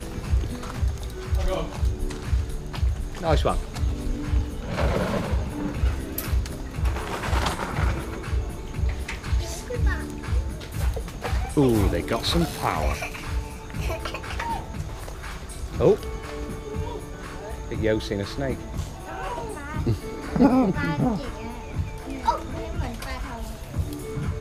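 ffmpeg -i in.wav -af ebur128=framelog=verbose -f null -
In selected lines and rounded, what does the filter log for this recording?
Integrated loudness:
  I:         -27.5 LUFS
  Threshold: -37.5 LUFS
Loudness range:
  LRA:         4.2 LU
  Threshold: -47.3 LUFS
  LRA low:   -29.6 LUFS
  LRA high:  -25.4 LUFS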